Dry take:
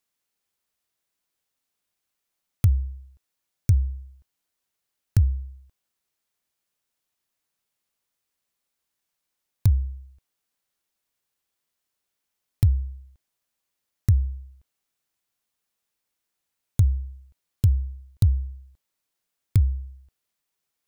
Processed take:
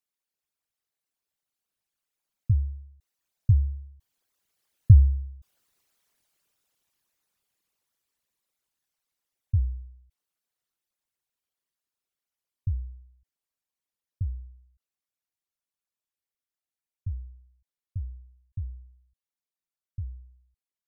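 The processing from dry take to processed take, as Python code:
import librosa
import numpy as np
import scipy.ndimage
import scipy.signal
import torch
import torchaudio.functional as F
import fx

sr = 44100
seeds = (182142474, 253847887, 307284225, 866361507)

y = fx.envelope_sharpen(x, sr, power=2.0)
y = fx.doppler_pass(y, sr, speed_mps=19, closest_m=17.0, pass_at_s=5.63)
y = F.gain(torch.from_numpy(y), 8.0).numpy()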